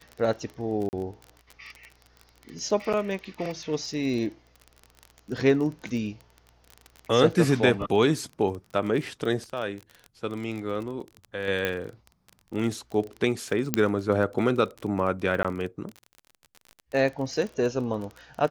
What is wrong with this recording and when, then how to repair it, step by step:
crackle 27/s -32 dBFS
0.89–0.93 gap 39 ms
11.65 pop -13 dBFS
13.74 pop -5 dBFS
15.43–15.45 gap 16 ms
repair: de-click; interpolate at 0.89, 39 ms; interpolate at 15.43, 16 ms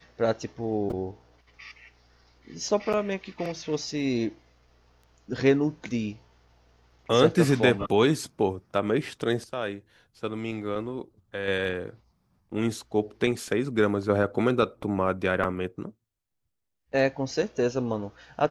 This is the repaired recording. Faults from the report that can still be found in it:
11.65 pop

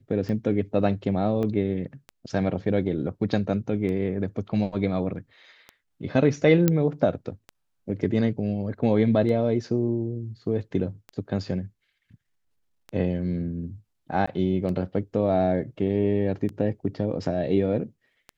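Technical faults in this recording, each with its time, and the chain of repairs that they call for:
tick 33 1/3 rpm -23 dBFS
1.43 gap 2.4 ms
6.68 pop -7 dBFS
14.26–14.28 gap 15 ms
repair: de-click; interpolate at 1.43, 2.4 ms; interpolate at 14.26, 15 ms

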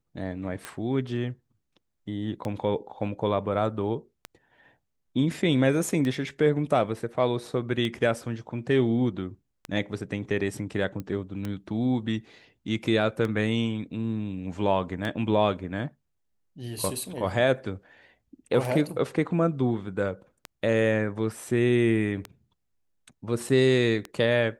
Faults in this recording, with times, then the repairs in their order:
tick 33 1/3 rpm -18 dBFS
11 pop -22 dBFS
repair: de-click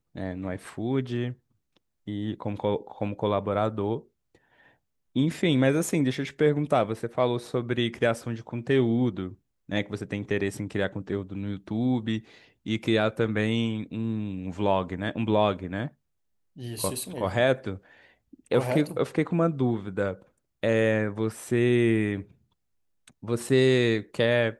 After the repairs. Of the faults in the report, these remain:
none

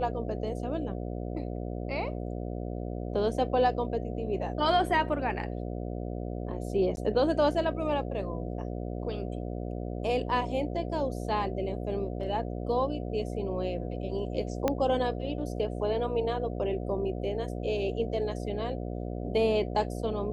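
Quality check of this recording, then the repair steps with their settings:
buzz 60 Hz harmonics 12 -35 dBFS
6.96–6.97 gap 11 ms
14.68 pop -13 dBFS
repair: de-click; de-hum 60 Hz, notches 12; interpolate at 6.96, 11 ms

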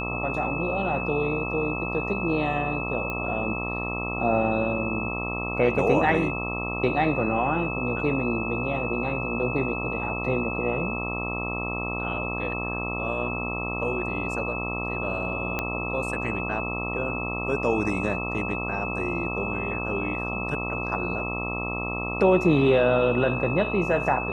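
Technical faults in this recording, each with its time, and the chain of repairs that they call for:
buzz 60 Hz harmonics 22 -32 dBFS
tone 2600 Hz -31 dBFS
3.1 pop -18 dBFS
15.59 pop -12 dBFS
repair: de-click; de-hum 60 Hz, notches 22; notch 2600 Hz, Q 30

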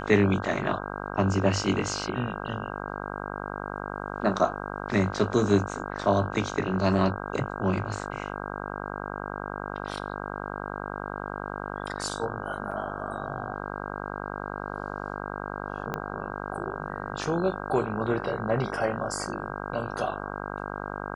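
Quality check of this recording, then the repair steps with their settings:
buzz 50 Hz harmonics 32 -35 dBFS
12.71–12.72 gap 5.9 ms
15.94 pop -17 dBFS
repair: de-click; de-hum 50 Hz, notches 32; interpolate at 12.71, 5.9 ms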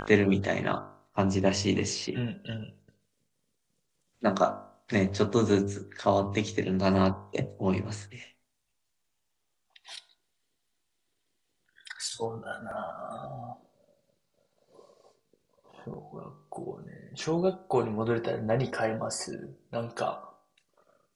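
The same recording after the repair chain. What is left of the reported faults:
15.94 pop

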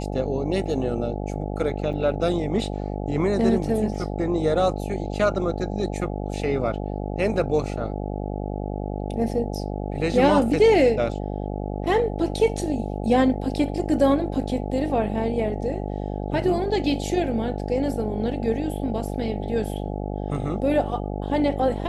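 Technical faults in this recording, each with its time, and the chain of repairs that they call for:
buzz 50 Hz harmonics 17 -29 dBFS
1.93 gap 4.9 ms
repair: de-hum 50 Hz, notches 17; interpolate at 1.93, 4.9 ms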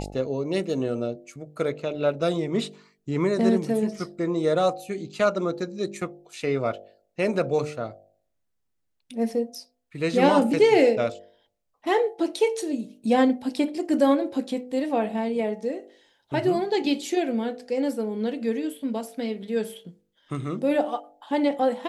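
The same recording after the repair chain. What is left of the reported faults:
none

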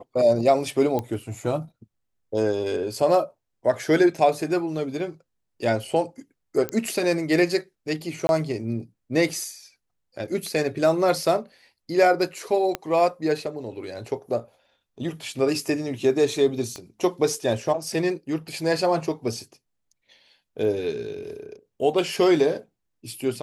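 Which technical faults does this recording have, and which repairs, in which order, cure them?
0.99 pop -14 dBFS
6.69 pop -13 dBFS
8.27–8.29 gap 21 ms
12.75 pop -11 dBFS
16.76 pop -21 dBFS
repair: de-click; interpolate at 8.27, 21 ms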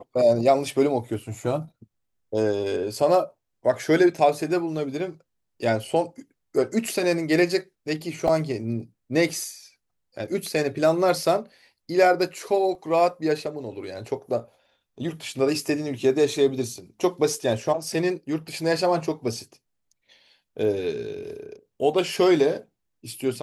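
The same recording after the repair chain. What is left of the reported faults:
12.75 pop
16.76 pop

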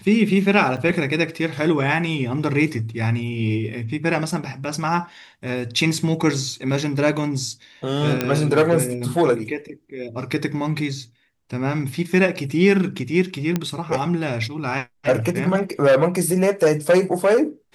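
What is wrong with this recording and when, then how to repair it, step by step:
0.77–0.78 gap 5.7 ms
8.21 pop -6 dBFS
13.56 pop -8 dBFS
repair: de-click; interpolate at 0.77, 5.7 ms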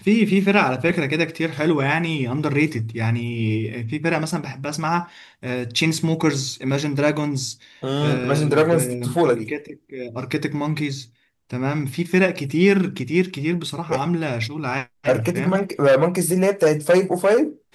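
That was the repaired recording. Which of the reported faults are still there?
none

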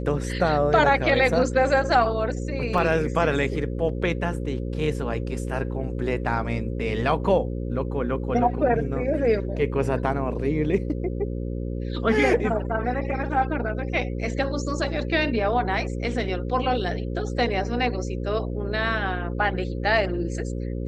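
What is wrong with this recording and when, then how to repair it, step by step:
buzz 60 Hz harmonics 9 -29 dBFS
2.78 gap 2.6 ms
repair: de-hum 60 Hz, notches 9; interpolate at 2.78, 2.6 ms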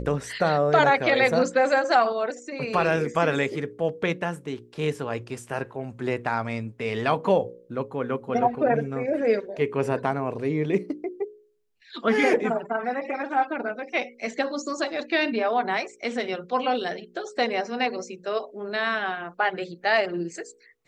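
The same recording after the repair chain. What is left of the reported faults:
none

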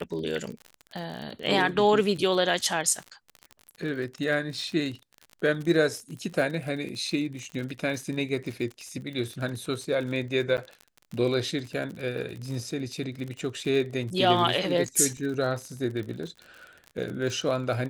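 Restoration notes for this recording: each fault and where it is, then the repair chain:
crackle 44/s -33 dBFS
10.57–10.58 gap 9.1 ms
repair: de-click; interpolate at 10.57, 9.1 ms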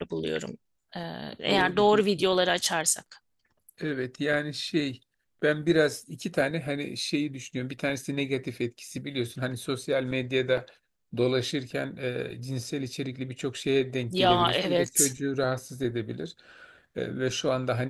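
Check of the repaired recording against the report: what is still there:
none

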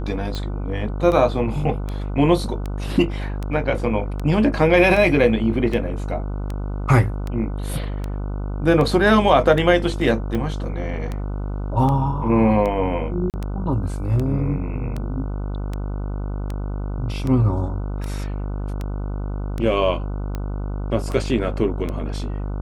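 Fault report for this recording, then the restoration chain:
buzz 50 Hz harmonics 30 -26 dBFS
tick 78 rpm -15 dBFS
13.3–13.34 gap 38 ms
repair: de-click; de-hum 50 Hz, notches 30; interpolate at 13.3, 38 ms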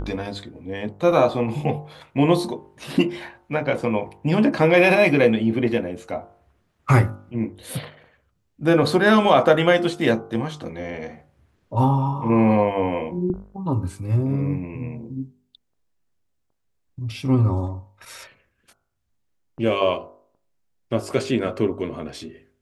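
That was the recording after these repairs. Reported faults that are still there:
none

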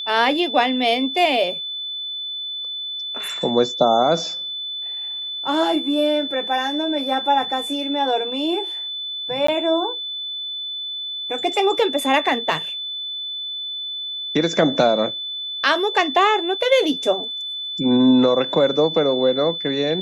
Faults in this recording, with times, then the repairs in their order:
tone 3500 Hz -26 dBFS
9.47–9.48 gap 14 ms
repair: notch 3500 Hz, Q 30; interpolate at 9.47, 14 ms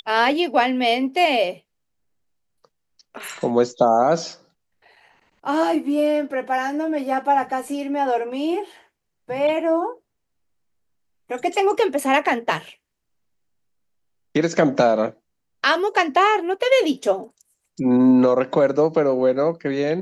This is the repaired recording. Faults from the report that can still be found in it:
none

